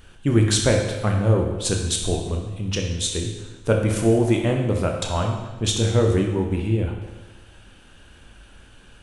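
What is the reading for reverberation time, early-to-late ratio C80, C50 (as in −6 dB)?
1.2 s, 6.0 dB, 4.0 dB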